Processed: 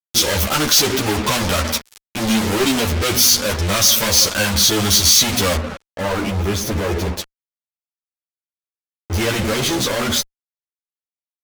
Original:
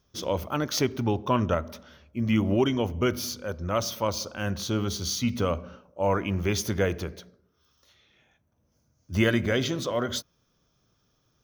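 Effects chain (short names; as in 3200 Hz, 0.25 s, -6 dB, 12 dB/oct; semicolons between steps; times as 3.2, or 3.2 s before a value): fuzz box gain 48 dB, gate -43 dBFS; high shelf 2000 Hz +10.5 dB, from 5.56 s -3 dB, from 7.17 s +4 dB; ensemble effect; gain -2.5 dB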